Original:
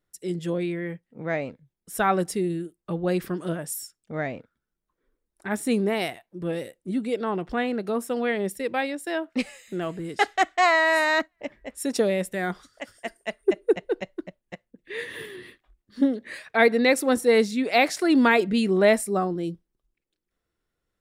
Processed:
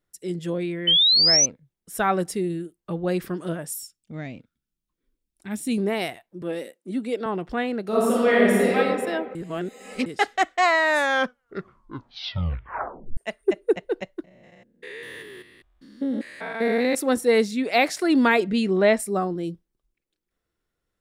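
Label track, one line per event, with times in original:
0.870000	1.460000	painted sound rise 3–6.2 kHz -17 dBFS
3.730000	5.780000	high-order bell 860 Hz -10.5 dB 2.6 oct
6.420000	7.260000	high-pass 200 Hz 24 dB/octave
7.870000	8.760000	reverb throw, RT60 1.9 s, DRR -7.5 dB
9.350000	10.060000	reverse
10.810000	10.810000	tape stop 2.36 s
14.240000	16.950000	spectrogram pixelated in time every 200 ms
18.390000	18.980000	low-pass 11 kHz -> 4.9 kHz

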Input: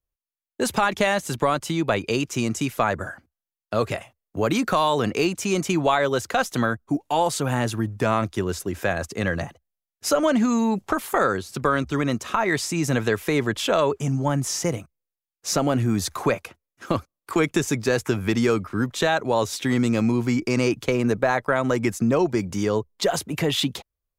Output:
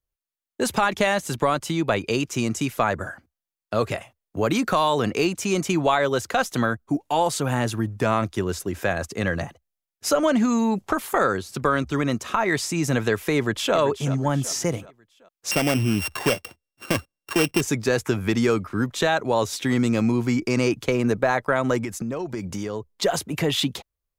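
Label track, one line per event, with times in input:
13.360000	13.760000	echo throw 380 ms, feedback 45%, level -12.5 dB
15.510000	17.610000	sorted samples in blocks of 16 samples
21.790000	22.880000	compression, threshold -25 dBFS

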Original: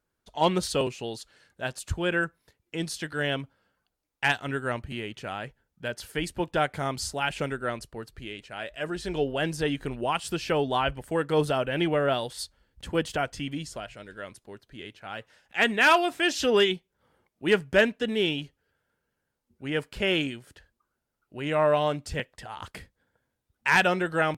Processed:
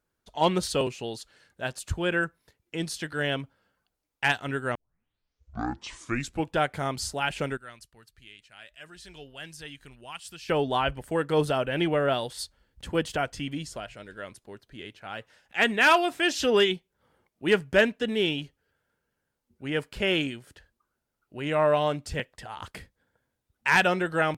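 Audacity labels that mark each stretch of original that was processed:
4.750000	4.750000	tape start 1.81 s
7.570000	10.490000	amplifier tone stack bass-middle-treble 5-5-5

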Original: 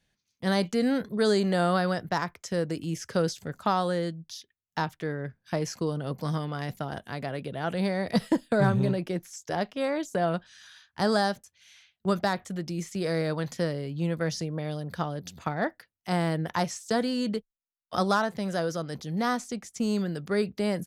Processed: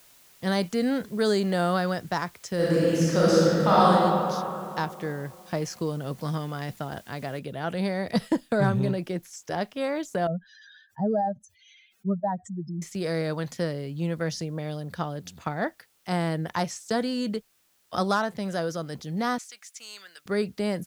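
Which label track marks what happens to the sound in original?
2.550000	3.890000	reverb throw, RT60 2.8 s, DRR -8.5 dB
7.390000	7.390000	noise floor step -56 dB -67 dB
10.270000	12.820000	spectral contrast enhancement exponent 3.1
19.380000	20.260000	Chebyshev high-pass 1.8 kHz

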